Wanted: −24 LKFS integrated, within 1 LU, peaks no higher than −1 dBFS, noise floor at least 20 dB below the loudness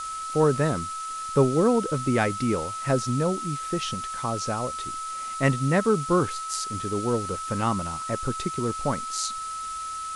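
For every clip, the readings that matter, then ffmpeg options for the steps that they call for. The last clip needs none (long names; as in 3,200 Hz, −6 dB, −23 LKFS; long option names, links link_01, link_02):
interfering tone 1,300 Hz; level of the tone −31 dBFS; background noise floor −34 dBFS; target noise floor −46 dBFS; integrated loudness −26.0 LKFS; sample peak −6.5 dBFS; target loudness −24.0 LKFS
→ -af "bandreject=frequency=1300:width=30"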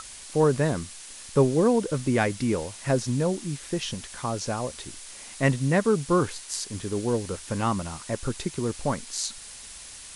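interfering tone none found; background noise floor −43 dBFS; target noise floor −47 dBFS
→ -af "afftdn=noise_reduction=6:noise_floor=-43"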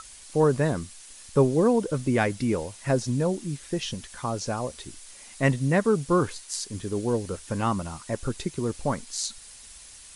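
background noise floor −47 dBFS; integrated loudness −27.0 LKFS; sample peak −7.0 dBFS; target loudness −24.0 LKFS
→ -af "volume=3dB"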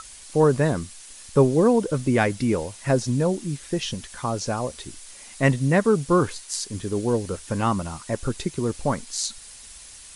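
integrated loudness −24.0 LKFS; sample peak −4.0 dBFS; background noise floor −44 dBFS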